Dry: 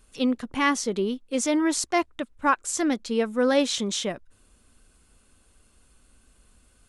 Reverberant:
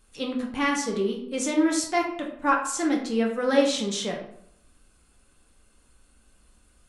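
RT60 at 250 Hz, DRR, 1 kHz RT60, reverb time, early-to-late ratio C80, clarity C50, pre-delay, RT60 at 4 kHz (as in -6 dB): 0.75 s, -1.0 dB, 0.70 s, 0.70 s, 10.0 dB, 6.5 dB, 5 ms, 0.45 s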